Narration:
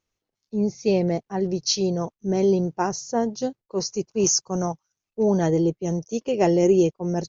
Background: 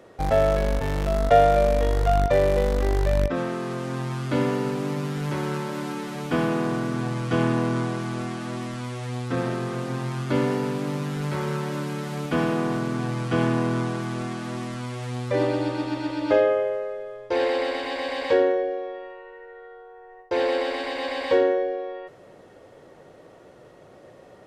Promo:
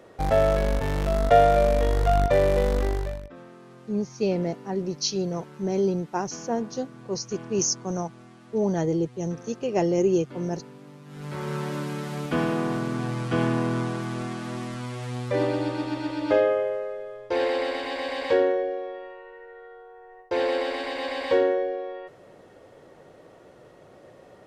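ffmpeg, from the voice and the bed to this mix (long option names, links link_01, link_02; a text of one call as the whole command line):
ffmpeg -i stem1.wav -i stem2.wav -filter_complex "[0:a]adelay=3350,volume=-4dB[link_01];[1:a]volume=16.5dB,afade=type=out:start_time=2.77:duration=0.44:silence=0.125893,afade=type=in:start_time=11.05:duration=0.57:silence=0.141254[link_02];[link_01][link_02]amix=inputs=2:normalize=0" out.wav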